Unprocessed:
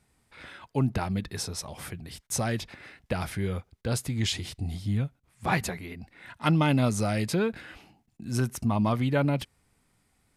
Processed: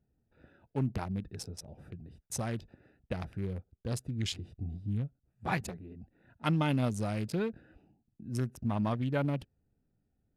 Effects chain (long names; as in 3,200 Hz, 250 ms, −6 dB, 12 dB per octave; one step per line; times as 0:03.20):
adaptive Wiener filter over 41 samples
level −5.5 dB